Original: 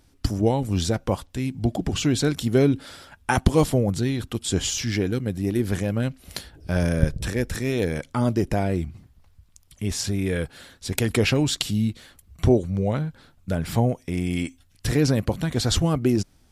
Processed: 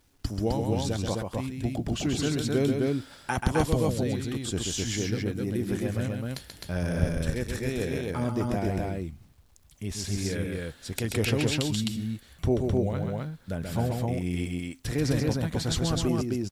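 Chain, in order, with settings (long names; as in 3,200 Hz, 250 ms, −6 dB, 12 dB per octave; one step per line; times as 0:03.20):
bit-depth reduction 10 bits, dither none
loudspeakers that aren't time-aligned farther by 46 metres −5 dB, 89 metres −2 dB
level −7.5 dB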